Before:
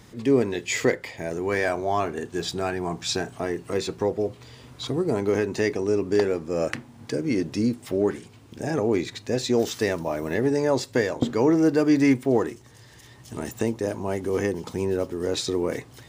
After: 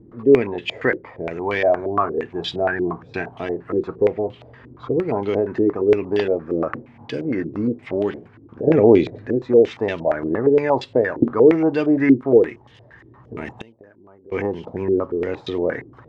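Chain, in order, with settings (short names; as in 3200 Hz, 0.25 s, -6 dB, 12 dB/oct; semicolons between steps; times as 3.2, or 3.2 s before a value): 8.67–9.29 resonant low shelf 700 Hz +8 dB, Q 1.5; 13.61–14.32 flipped gate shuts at -23 dBFS, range -24 dB; stepped low-pass 8.6 Hz 340–3100 Hz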